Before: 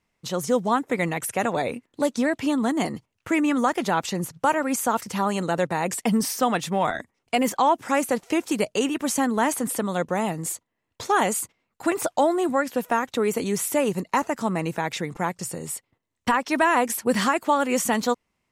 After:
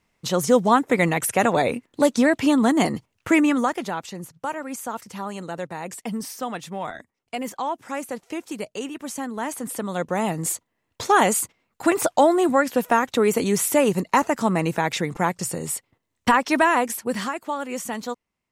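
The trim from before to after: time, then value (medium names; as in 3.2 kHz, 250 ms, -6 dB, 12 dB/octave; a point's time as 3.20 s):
3.36 s +5 dB
4.04 s -7.5 dB
9.33 s -7.5 dB
10.49 s +4 dB
16.47 s +4 dB
17.36 s -7 dB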